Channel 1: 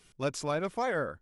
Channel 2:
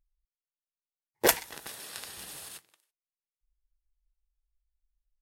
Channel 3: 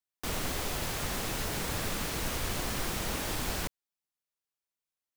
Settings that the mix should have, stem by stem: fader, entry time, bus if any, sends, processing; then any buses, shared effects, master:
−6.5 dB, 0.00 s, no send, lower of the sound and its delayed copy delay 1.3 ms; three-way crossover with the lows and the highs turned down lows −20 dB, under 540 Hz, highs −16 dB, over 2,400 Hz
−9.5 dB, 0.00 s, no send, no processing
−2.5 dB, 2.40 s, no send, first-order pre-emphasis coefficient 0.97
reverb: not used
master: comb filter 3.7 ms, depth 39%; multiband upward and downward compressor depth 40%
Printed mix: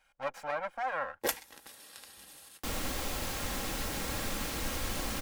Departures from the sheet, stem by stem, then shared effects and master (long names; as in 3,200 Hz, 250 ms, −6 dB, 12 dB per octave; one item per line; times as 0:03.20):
stem 1 −6.5 dB → +1.0 dB
stem 3: missing first-order pre-emphasis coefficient 0.97
master: missing multiband upward and downward compressor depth 40%